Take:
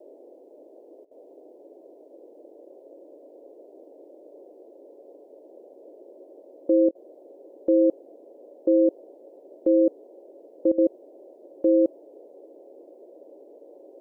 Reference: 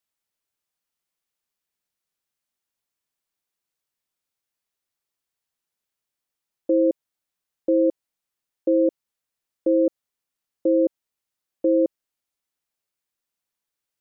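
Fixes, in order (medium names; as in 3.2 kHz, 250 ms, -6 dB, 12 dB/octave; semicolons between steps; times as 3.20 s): band-stop 550 Hz, Q 30; interpolate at 1.05/6.89/10.72 s, 60 ms; noise print and reduce 30 dB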